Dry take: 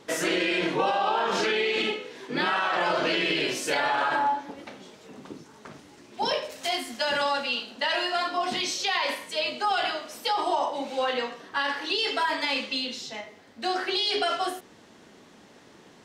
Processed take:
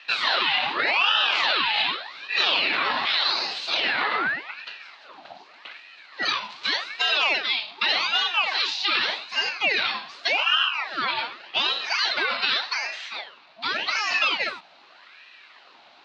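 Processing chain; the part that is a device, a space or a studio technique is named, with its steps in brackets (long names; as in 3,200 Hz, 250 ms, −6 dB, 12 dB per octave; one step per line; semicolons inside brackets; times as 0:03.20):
0:03.05–0:03.84: high-pass filter 920 Hz 12 dB per octave
voice changer toy (ring modulator whose carrier an LFO sweeps 1,300 Hz, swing 70%, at 0.85 Hz; loudspeaker in its box 470–4,500 Hz, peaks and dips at 470 Hz −6 dB, 2,700 Hz +5 dB, 4,100 Hz +9 dB)
level +4.5 dB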